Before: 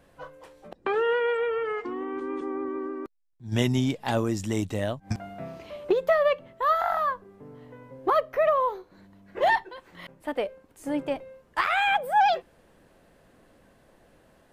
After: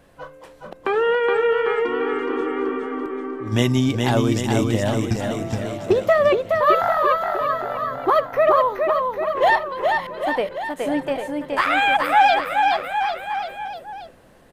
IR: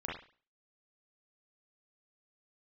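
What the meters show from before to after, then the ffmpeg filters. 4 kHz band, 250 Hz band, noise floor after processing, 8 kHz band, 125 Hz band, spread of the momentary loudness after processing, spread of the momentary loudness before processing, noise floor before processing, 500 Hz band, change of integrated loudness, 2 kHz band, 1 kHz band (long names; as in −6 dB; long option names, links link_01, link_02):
+7.5 dB, +7.5 dB, −48 dBFS, +7.5 dB, +8.0 dB, 10 LU, 18 LU, −61 dBFS, +7.5 dB, +6.5 dB, +7.5 dB, +7.5 dB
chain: -filter_complex "[0:a]aecho=1:1:420|798|1138|1444|1720:0.631|0.398|0.251|0.158|0.1,asplit=2[link_01][link_02];[1:a]atrim=start_sample=2205[link_03];[link_02][link_03]afir=irnorm=-1:irlink=0,volume=-25.5dB[link_04];[link_01][link_04]amix=inputs=2:normalize=0,volume=5dB"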